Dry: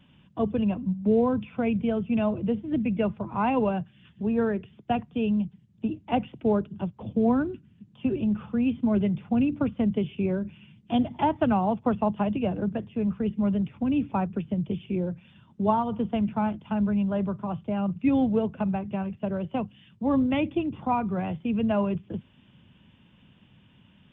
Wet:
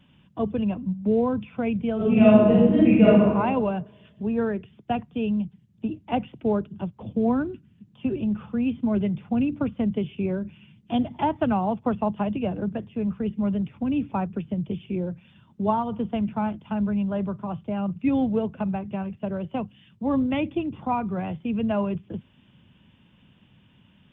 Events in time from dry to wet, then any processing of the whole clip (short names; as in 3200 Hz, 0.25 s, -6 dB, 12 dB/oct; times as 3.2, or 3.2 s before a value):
1.96–3.25 reverb throw, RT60 1.2 s, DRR -10 dB